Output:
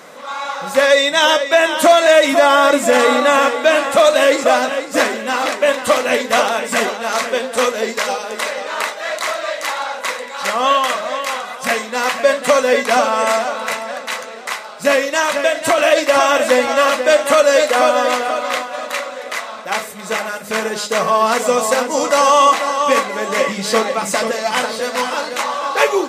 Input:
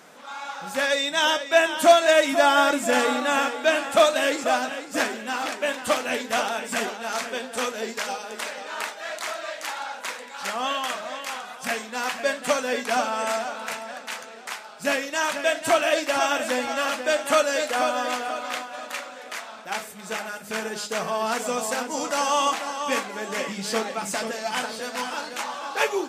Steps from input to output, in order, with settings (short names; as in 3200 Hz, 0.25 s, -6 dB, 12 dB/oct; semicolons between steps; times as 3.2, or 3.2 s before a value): 15.19–15.78 compressor, threshold -21 dBFS, peak gain reduction 7 dB; small resonant body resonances 540/1100/2000/3900 Hz, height 8 dB, ringing for 25 ms; maximiser +9 dB; gain -1 dB